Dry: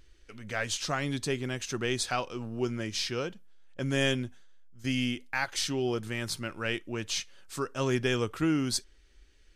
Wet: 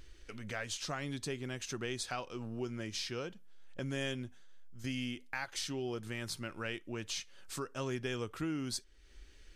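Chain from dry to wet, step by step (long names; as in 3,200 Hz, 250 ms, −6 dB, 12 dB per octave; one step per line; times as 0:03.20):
downward compressor 2 to 1, threshold −50 dBFS, peak gain reduction 14.5 dB
level +4 dB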